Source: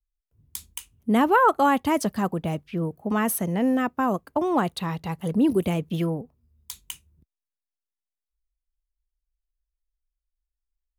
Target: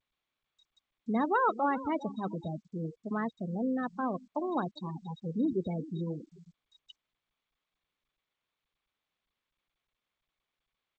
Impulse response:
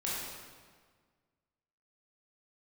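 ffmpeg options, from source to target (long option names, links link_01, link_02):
-filter_complex "[0:a]acrusher=bits=10:mix=0:aa=0.000001,bandreject=frequency=67.88:width_type=h:width=4,bandreject=frequency=135.76:width_type=h:width=4,bandreject=frequency=203.64:width_type=h:width=4,bandreject=frequency=271.52:width_type=h:width=4,bandreject=frequency=339.4:width_type=h:width=4,bandreject=frequency=407.28:width_type=h:width=4,bandreject=frequency=475.16:width_type=h:width=4,bandreject=frequency=543.04:width_type=h:width=4,bandreject=frequency=610.92:width_type=h:width=4,asplit=2[link_01][link_02];[link_02]aecho=0:1:397|794|1191|1588:0.15|0.0658|0.029|0.0127[link_03];[link_01][link_03]amix=inputs=2:normalize=0,aeval=exprs='val(0)+0.01*sin(2*PI*3800*n/s)':channel_layout=same,afftfilt=real='re*gte(hypot(re,im),0.1)':imag='im*gte(hypot(re,im),0.1)':win_size=1024:overlap=0.75,volume=-9dB" -ar 16000 -c:a g722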